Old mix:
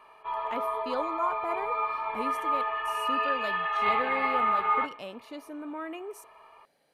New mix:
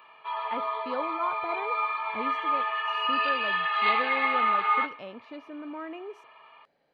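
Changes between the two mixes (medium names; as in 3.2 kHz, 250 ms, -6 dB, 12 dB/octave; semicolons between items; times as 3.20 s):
speech: add distance through air 220 m; background: add tilt EQ +4.5 dB/octave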